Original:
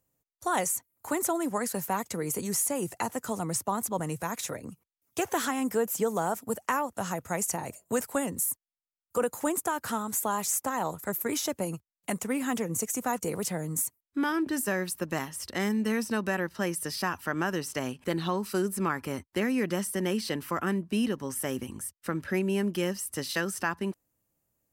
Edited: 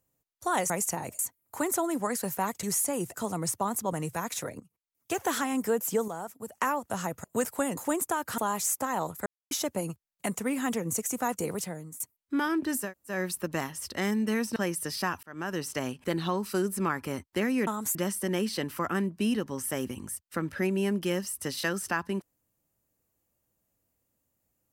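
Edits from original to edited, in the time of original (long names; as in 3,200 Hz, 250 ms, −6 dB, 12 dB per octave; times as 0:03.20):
0:02.14–0:02.45: remove
0:02.96–0:03.21: remove
0:04.67–0:05.31: fade in, from −16.5 dB
0:06.15–0:06.59: clip gain −8.5 dB
0:07.31–0:07.80: move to 0:00.70
0:08.33–0:09.33: remove
0:09.94–0:10.22: move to 0:19.67
0:11.10–0:11.35: silence
0:13.31–0:13.84: fade out, to −21 dB
0:14.70: splice in room tone 0.26 s, crossfade 0.16 s
0:16.14–0:16.56: remove
0:17.23–0:17.62: fade in linear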